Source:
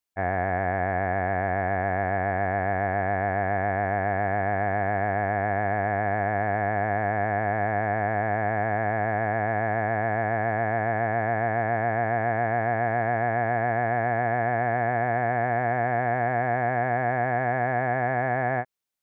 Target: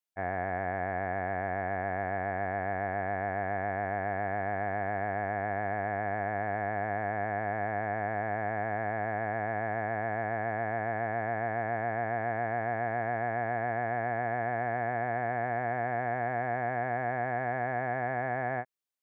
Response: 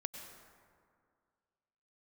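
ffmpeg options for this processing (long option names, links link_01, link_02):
-af "lowshelf=frequency=76:gain=-8,volume=-6.5dB"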